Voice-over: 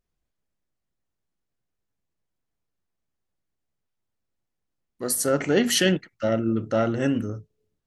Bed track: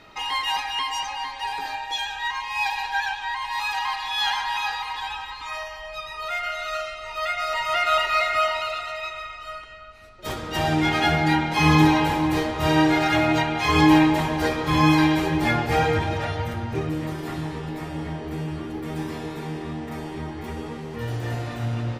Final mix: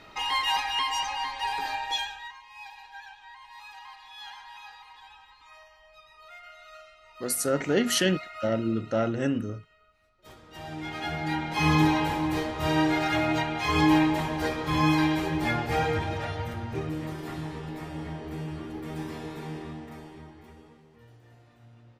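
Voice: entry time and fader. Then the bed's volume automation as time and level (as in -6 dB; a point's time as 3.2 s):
2.20 s, -3.5 dB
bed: 1.96 s -1 dB
2.39 s -19.5 dB
10.46 s -19.5 dB
11.63 s -5.5 dB
19.57 s -5.5 dB
21.23 s -27 dB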